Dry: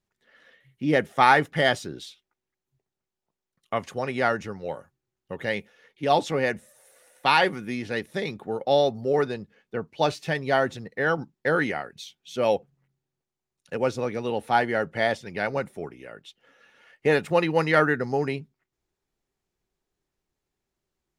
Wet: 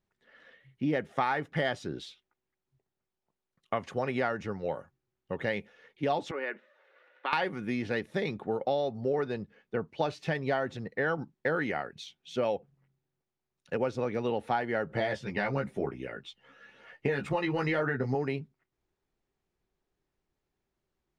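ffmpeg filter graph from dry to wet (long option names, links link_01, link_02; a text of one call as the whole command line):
ffmpeg -i in.wav -filter_complex "[0:a]asettb=1/sr,asplit=3[link_01][link_02][link_03];[link_01]atrim=end=6.314[link_04];[link_02]atrim=start=6.31:end=7.33,asetpts=PTS-STARTPTS,afade=type=in:duration=0.004:curve=qsin,afade=type=out:start_time=1.016:duration=0.004:curve=qsin,acompressor=threshold=-27dB:ratio=4:attack=3.2:release=140:knee=1:detection=peak,highpass=frequency=330:width=0.5412,highpass=frequency=330:width=1.3066,equalizer=frequency=480:width_type=q:width=4:gain=-5,equalizer=frequency=720:width_type=q:width=4:gain=-9,equalizer=frequency=1400:width_type=q:width=4:gain=4,lowpass=frequency=3300:width=0.5412,lowpass=frequency=3300:width=1.3066[link_05];[link_03]atrim=start=7.326[link_06];[link_04][link_05]acrossfade=duration=0.004:curve1=hsin:curve2=qsin[link_07];[link_07][link_06]acrossfade=duration=0.004:curve1=qsin:curve2=hsin,asettb=1/sr,asplit=3[link_08][link_09][link_10];[link_08]atrim=end=14.894[link_11];[link_09]atrim=start=14.89:end=18.15,asetpts=PTS-STARTPTS,afade=type=in:duration=0.004:curve=qsin,afade=type=out:start_time=3.256:duration=0.004:curve=qsin,acompressor=threshold=-23dB:ratio=2:attack=3.2:release=140:knee=1:detection=peak,aphaser=in_gain=1:out_gain=1:delay=1.1:decay=0.37:speed=1:type=triangular,asplit=2[link_12][link_13];[link_13]adelay=15,volume=-3dB[link_14];[link_12][link_14]amix=inputs=2:normalize=0,atrim=end_sample=143766[link_15];[link_10]atrim=start=18.146[link_16];[link_11][link_15]acrossfade=duration=0.004:curve1=hsin:curve2=qsin[link_17];[link_17][link_16]acrossfade=duration=0.004:curve1=qsin:curve2=hsin,aemphasis=mode=reproduction:type=50fm,acompressor=threshold=-26dB:ratio=6" out.wav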